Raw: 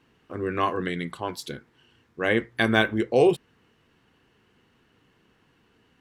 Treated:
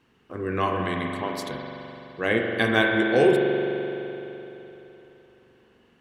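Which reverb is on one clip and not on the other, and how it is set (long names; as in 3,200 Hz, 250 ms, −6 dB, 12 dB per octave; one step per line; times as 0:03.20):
spring reverb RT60 3.4 s, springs 42 ms, chirp 30 ms, DRR 1 dB
level −1 dB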